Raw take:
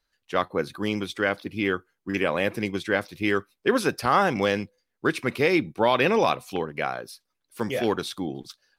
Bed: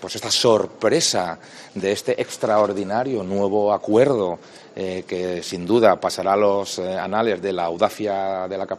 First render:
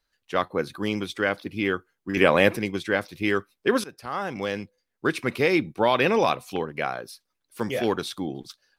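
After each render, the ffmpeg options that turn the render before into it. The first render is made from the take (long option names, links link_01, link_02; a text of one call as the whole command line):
ffmpeg -i in.wav -filter_complex "[0:a]asplit=4[link_01][link_02][link_03][link_04];[link_01]atrim=end=2.172[link_05];[link_02]atrim=start=2.168:end=2.572,asetpts=PTS-STARTPTS,volume=6.5dB[link_06];[link_03]atrim=start=2.568:end=3.84,asetpts=PTS-STARTPTS,afade=type=out:start_time=1.268:duration=0.004:curve=hsin:silence=0.1[link_07];[link_04]atrim=start=3.84,asetpts=PTS-STARTPTS,afade=type=in:duration=1.31:silence=0.1[link_08];[link_05][link_06]acrossfade=duration=0.004:curve1=hsin:curve2=hsin[link_09];[link_07][link_08]concat=n=2:v=0:a=1[link_10];[link_09][link_10]acrossfade=duration=0.004:curve1=hsin:curve2=hsin" out.wav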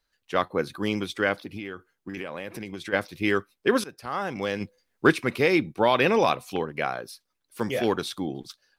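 ffmpeg -i in.wav -filter_complex "[0:a]asplit=3[link_01][link_02][link_03];[link_01]afade=type=out:start_time=1.41:duration=0.02[link_04];[link_02]acompressor=threshold=-31dB:ratio=8:attack=3.2:release=140:knee=1:detection=peak,afade=type=in:start_time=1.41:duration=0.02,afade=type=out:start_time=2.92:duration=0.02[link_05];[link_03]afade=type=in:start_time=2.92:duration=0.02[link_06];[link_04][link_05][link_06]amix=inputs=3:normalize=0,asplit=3[link_07][link_08][link_09];[link_07]afade=type=out:start_time=4.6:duration=0.02[link_10];[link_08]acontrast=56,afade=type=in:start_time=4.6:duration=0.02,afade=type=out:start_time=5.13:duration=0.02[link_11];[link_09]afade=type=in:start_time=5.13:duration=0.02[link_12];[link_10][link_11][link_12]amix=inputs=3:normalize=0" out.wav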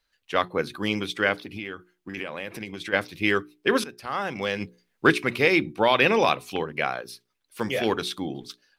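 ffmpeg -i in.wav -af "equalizer=frequency=2700:width_type=o:width=1.4:gain=5,bandreject=frequency=60:width_type=h:width=6,bandreject=frequency=120:width_type=h:width=6,bandreject=frequency=180:width_type=h:width=6,bandreject=frequency=240:width_type=h:width=6,bandreject=frequency=300:width_type=h:width=6,bandreject=frequency=360:width_type=h:width=6,bandreject=frequency=420:width_type=h:width=6" out.wav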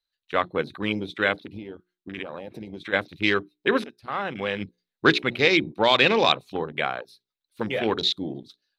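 ffmpeg -i in.wav -af "afwtdn=0.0224,equalizer=frequency=3900:width_type=o:width=0.38:gain=13" out.wav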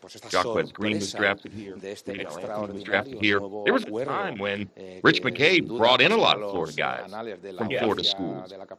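ffmpeg -i in.wav -i bed.wav -filter_complex "[1:a]volume=-15dB[link_01];[0:a][link_01]amix=inputs=2:normalize=0" out.wav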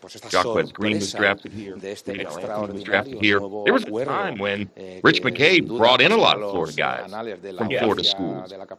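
ffmpeg -i in.wav -af "volume=4dB,alimiter=limit=-2dB:level=0:latency=1" out.wav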